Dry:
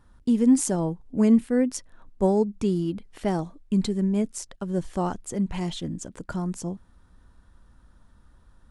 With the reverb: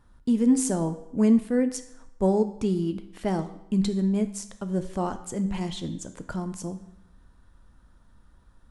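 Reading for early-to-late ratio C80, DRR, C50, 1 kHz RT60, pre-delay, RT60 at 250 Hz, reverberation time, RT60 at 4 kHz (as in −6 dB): 14.5 dB, 9.0 dB, 12.0 dB, 0.80 s, 10 ms, 0.80 s, 0.80 s, 0.70 s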